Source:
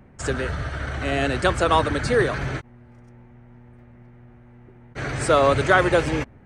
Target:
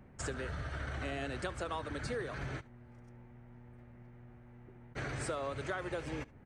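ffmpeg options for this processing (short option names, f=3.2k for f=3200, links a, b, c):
-filter_complex "[0:a]acompressor=threshold=-29dB:ratio=6,asplit=2[a][b];[b]aecho=0:1:73:0.0794[c];[a][c]amix=inputs=2:normalize=0,volume=-7dB"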